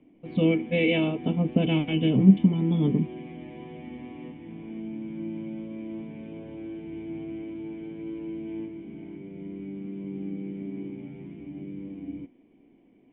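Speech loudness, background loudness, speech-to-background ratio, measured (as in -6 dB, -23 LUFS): -23.5 LUFS, -38.5 LUFS, 15.0 dB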